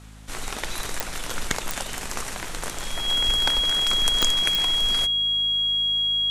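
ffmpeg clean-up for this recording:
ffmpeg -i in.wav -af "adeclick=threshold=4,bandreject=frequency=52.9:width_type=h:width=4,bandreject=frequency=105.8:width_type=h:width=4,bandreject=frequency=158.7:width_type=h:width=4,bandreject=frequency=211.6:width_type=h:width=4,bandreject=frequency=264.5:width_type=h:width=4,bandreject=frequency=3300:width=30" out.wav

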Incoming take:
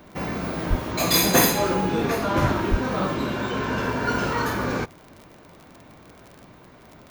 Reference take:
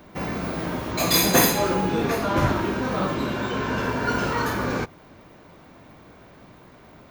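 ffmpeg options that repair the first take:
ffmpeg -i in.wav -filter_complex "[0:a]adeclick=threshold=4,asplit=3[link_01][link_02][link_03];[link_01]afade=type=out:start_time=0.69:duration=0.02[link_04];[link_02]highpass=frequency=140:width=0.5412,highpass=frequency=140:width=1.3066,afade=type=in:start_time=0.69:duration=0.02,afade=type=out:start_time=0.81:duration=0.02[link_05];[link_03]afade=type=in:start_time=0.81:duration=0.02[link_06];[link_04][link_05][link_06]amix=inputs=3:normalize=0,asplit=3[link_07][link_08][link_09];[link_07]afade=type=out:start_time=2.7:duration=0.02[link_10];[link_08]highpass=frequency=140:width=0.5412,highpass=frequency=140:width=1.3066,afade=type=in:start_time=2.7:duration=0.02,afade=type=out:start_time=2.82:duration=0.02[link_11];[link_09]afade=type=in:start_time=2.82:duration=0.02[link_12];[link_10][link_11][link_12]amix=inputs=3:normalize=0" out.wav

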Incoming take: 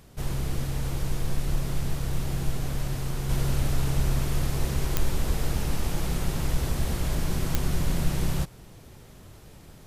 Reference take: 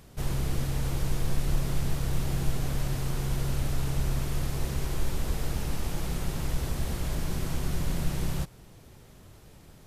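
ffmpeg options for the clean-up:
ffmpeg -i in.wav -af "adeclick=threshold=4,asetnsamples=nb_out_samples=441:pad=0,asendcmd='3.29 volume volume -3.5dB',volume=0dB" out.wav

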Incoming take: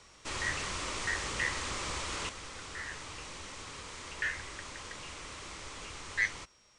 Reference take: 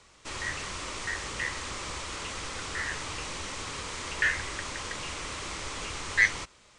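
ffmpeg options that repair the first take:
ffmpeg -i in.wav -af "bandreject=frequency=5600:width=30,asetnsamples=nb_out_samples=441:pad=0,asendcmd='2.29 volume volume 8dB',volume=0dB" out.wav

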